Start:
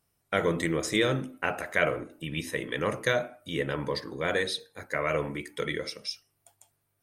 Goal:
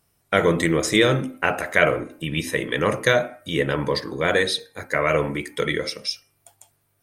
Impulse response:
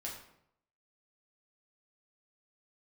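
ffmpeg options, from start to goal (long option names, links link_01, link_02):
-af "bandreject=frequency=264.4:width_type=h:width=4,bandreject=frequency=528.8:width_type=h:width=4,bandreject=frequency=793.2:width_type=h:width=4,bandreject=frequency=1057.6:width_type=h:width=4,bandreject=frequency=1322:width_type=h:width=4,bandreject=frequency=1586.4:width_type=h:width=4,bandreject=frequency=1850.8:width_type=h:width=4,bandreject=frequency=2115.2:width_type=h:width=4,bandreject=frequency=2379.6:width_type=h:width=4,volume=8dB"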